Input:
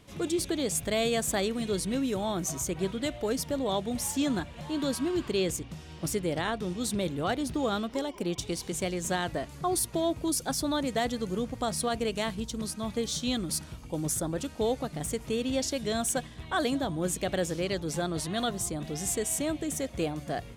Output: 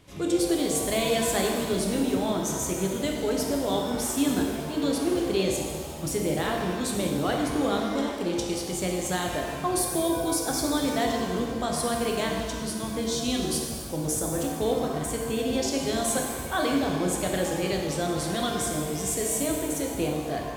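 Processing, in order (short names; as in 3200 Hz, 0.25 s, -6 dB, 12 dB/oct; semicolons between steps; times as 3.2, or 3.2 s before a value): shimmer reverb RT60 1.7 s, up +7 st, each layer -8 dB, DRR 0.5 dB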